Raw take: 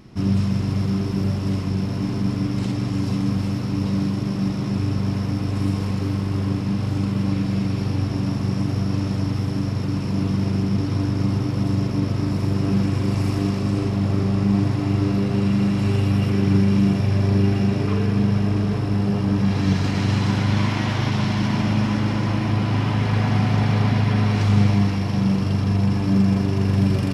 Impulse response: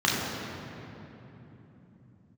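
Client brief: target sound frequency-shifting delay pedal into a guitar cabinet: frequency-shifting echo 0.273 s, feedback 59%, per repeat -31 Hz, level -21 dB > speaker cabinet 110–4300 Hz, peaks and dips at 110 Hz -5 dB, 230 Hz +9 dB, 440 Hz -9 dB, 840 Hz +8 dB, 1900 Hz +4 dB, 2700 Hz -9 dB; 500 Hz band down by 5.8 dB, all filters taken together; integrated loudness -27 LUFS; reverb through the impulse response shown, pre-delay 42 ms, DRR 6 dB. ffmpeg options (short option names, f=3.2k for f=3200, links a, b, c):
-filter_complex "[0:a]equalizer=f=500:t=o:g=-4.5,asplit=2[a][b];[1:a]atrim=start_sample=2205,adelay=42[c];[b][c]afir=irnorm=-1:irlink=0,volume=-22dB[d];[a][d]amix=inputs=2:normalize=0,asplit=6[e][f][g][h][i][j];[f]adelay=273,afreqshift=-31,volume=-21dB[k];[g]adelay=546,afreqshift=-62,volume=-25.6dB[l];[h]adelay=819,afreqshift=-93,volume=-30.2dB[m];[i]adelay=1092,afreqshift=-124,volume=-34.7dB[n];[j]adelay=1365,afreqshift=-155,volume=-39.3dB[o];[e][k][l][m][n][o]amix=inputs=6:normalize=0,highpass=110,equalizer=f=110:t=q:w=4:g=-5,equalizer=f=230:t=q:w=4:g=9,equalizer=f=440:t=q:w=4:g=-9,equalizer=f=840:t=q:w=4:g=8,equalizer=f=1.9k:t=q:w=4:g=4,equalizer=f=2.7k:t=q:w=4:g=-9,lowpass=f=4.3k:w=0.5412,lowpass=f=4.3k:w=1.3066,volume=-9dB"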